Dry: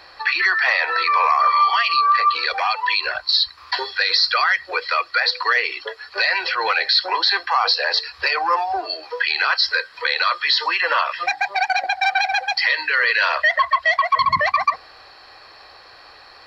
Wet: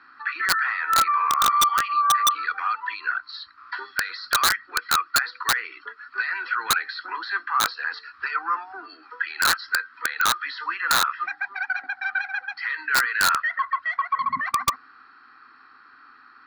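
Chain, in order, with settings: two resonant band-passes 590 Hz, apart 2.4 oct; integer overflow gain 18 dB; trim +5.5 dB

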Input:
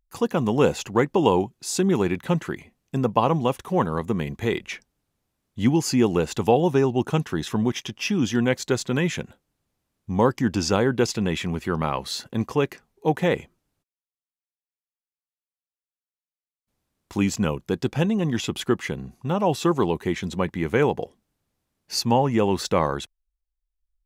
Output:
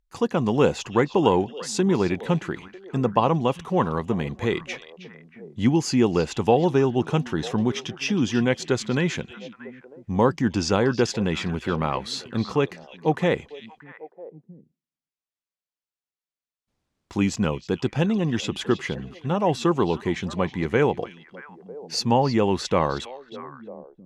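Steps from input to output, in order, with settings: low-pass 7.2 kHz 12 dB/octave; on a send: repeats whose band climbs or falls 316 ms, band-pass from 3.7 kHz, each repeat -1.4 oct, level -10 dB

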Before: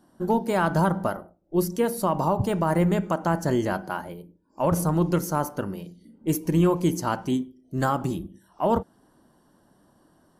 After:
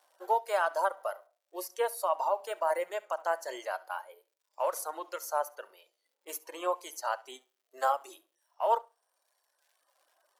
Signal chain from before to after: in parallel at -12 dB: crossover distortion -42 dBFS; on the sum: crackle 190 per s -50 dBFS; steep high-pass 530 Hz 36 dB/octave; flutter echo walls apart 11.6 m, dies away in 0.26 s; reverb removal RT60 1.5 s; harmonic-percussive split harmonic +8 dB; trim -8.5 dB

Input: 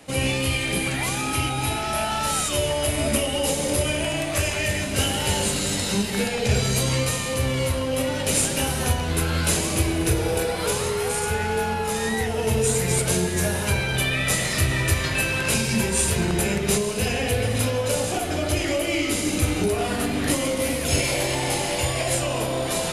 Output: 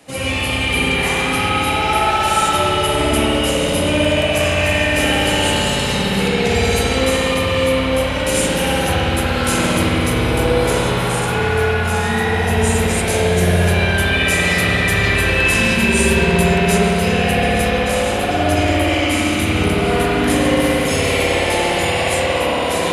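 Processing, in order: bass shelf 99 Hz -6 dB; spring tank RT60 3.8 s, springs 57 ms, chirp 65 ms, DRR -9 dB

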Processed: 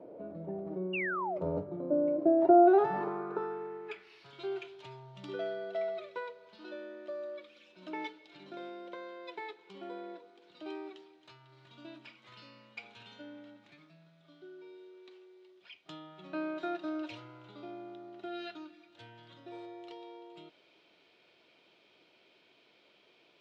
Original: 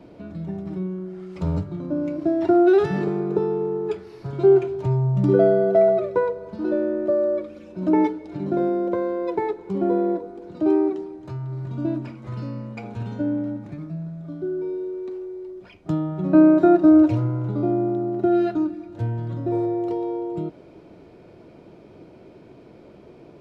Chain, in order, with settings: band-pass sweep 540 Hz -> 3.3 kHz, 2.38–4.32 s; painted sound fall, 0.93–1.38 s, 570–2900 Hz -38 dBFS; trim +3 dB

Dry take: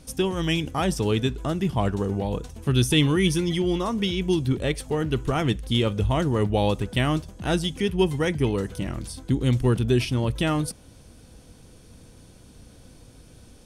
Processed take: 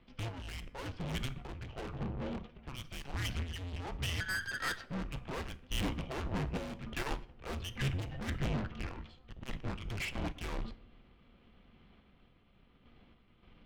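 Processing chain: bass shelf 140 Hz +11.5 dB; mistuned SSB -270 Hz 260–3500 Hz; 4.20–4.84 s: ring modulator 1.6 kHz; valve stage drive 38 dB, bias 0.65; random-step tremolo; on a send at -12 dB: reverberation RT60 0.90 s, pre-delay 6 ms; on the sum: upward expansion 1.5:1, over -53 dBFS; trim +7 dB

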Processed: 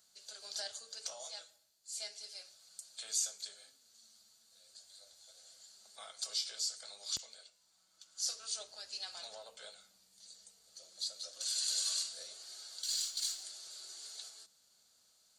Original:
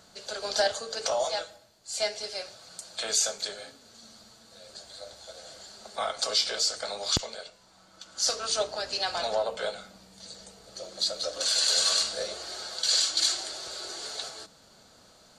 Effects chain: 12.83–13.43 s: partial rectifier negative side -3 dB; pre-emphasis filter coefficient 0.9; trim -7 dB

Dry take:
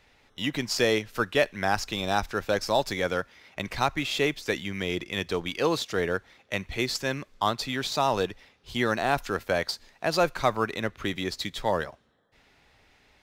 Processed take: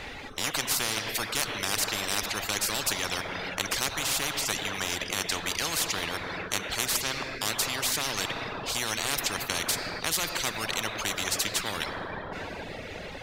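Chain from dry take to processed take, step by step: peaking EQ 5.3 kHz -3.5 dB 0.24 oct; on a send at -6.5 dB: reverberation RT60 2.5 s, pre-delay 3 ms; on the sum: reverb removal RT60 0.99 s; treble shelf 8.3 kHz -6.5 dB; spectrum-flattening compressor 10:1

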